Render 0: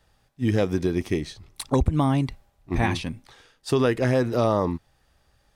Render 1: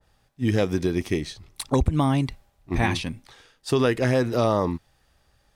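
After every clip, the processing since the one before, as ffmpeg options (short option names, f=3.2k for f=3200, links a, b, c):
-af "adynamicequalizer=threshold=0.0141:dfrequency=1700:dqfactor=0.7:tfrequency=1700:tqfactor=0.7:attack=5:release=100:ratio=0.375:range=1.5:mode=boostabove:tftype=highshelf"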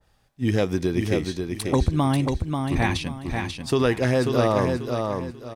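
-af "aecho=1:1:539|1078|1617|2156:0.562|0.169|0.0506|0.0152"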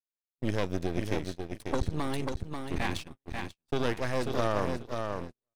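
-af "aeval=exprs='max(val(0),0)':c=same,agate=range=-48dB:threshold=-30dB:ratio=16:detection=peak,volume=-5dB"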